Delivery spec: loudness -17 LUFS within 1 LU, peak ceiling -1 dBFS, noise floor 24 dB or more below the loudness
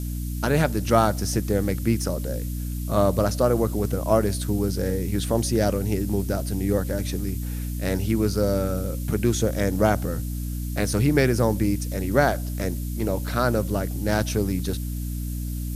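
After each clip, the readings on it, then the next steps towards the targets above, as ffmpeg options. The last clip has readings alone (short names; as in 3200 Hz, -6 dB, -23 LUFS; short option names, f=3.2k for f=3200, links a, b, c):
hum 60 Hz; harmonics up to 300 Hz; hum level -26 dBFS; noise floor -29 dBFS; noise floor target -49 dBFS; loudness -24.5 LUFS; peak -5.0 dBFS; loudness target -17.0 LUFS
-> -af "bandreject=f=60:t=h:w=4,bandreject=f=120:t=h:w=4,bandreject=f=180:t=h:w=4,bandreject=f=240:t=h:w=4,bandreject=f=300:t=h:w=4"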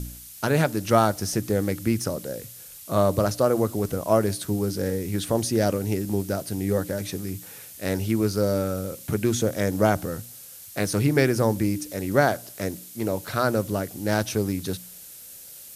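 hum none; noise floor -44 dBFS; noise floor target -49 dBFS
-> -af "afftdn=nr=6:nf=-44"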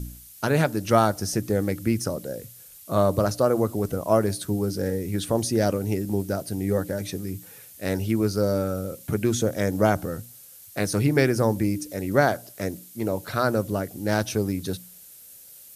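noise floor -47 dBFS; noise floor target -49 dBFS
-> -af "afftdn=nr=6:nf=-47"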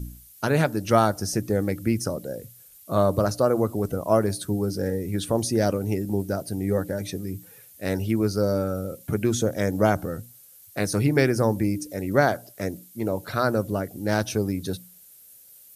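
noise floor -51 dBFS; loudness -25.0 LUFS; peak -5.0 dBFS; loudness target -17.0 LUFS
-> -af "volume=8dB,alimiter=limit=-1dB:level=0:latency=1"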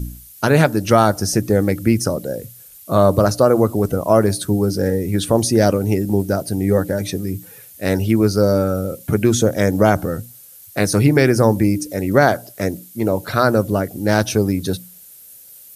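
loudness -17.5 LUFS; peak -1.0 dBFS; noise floor -43 dBFS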